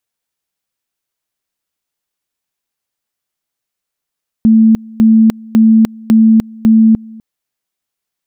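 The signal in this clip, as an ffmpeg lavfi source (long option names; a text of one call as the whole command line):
ffmpeg -f lavfi -i "aevalsrc='pow(10,(-3.5-25*gte(mod(t,0.55),0.3))/20)*sin(2*PI*222*t)':duration=2.75:sample_rate=44100" out.wav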